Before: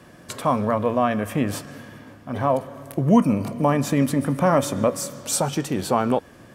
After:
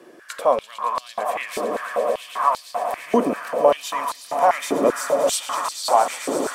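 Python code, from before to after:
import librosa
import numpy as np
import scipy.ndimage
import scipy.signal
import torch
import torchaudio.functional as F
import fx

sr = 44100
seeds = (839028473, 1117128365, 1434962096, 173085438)

y = fx.echo_swell(x, sr, ms=113, loudest=8, wet_db=-12.0)
y = fx.filter_held_highpass(y, sr, hz=5.1, low_hz=370.0, high_hz=4300.0)
y = y * 10.0 ** (-2.5 / 20.0)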